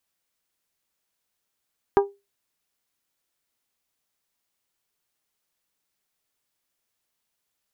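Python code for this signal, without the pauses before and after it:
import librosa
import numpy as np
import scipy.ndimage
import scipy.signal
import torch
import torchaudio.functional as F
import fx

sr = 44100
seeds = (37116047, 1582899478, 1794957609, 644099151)

y = fx.strike_glass(sr, length_s=0.89, level_db=-11.0, body='bell', hz=400.0, decay_s=0.24, tilt_db=4.5, modes=5)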